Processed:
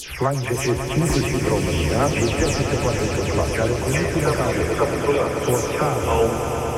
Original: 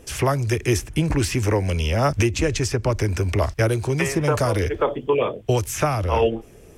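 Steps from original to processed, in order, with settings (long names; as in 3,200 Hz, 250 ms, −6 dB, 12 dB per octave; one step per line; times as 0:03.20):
every frequency bin delayed by itself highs early, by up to 180 ms
echo that builds up and dies away 109 ms, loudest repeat 5, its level −10.5 dB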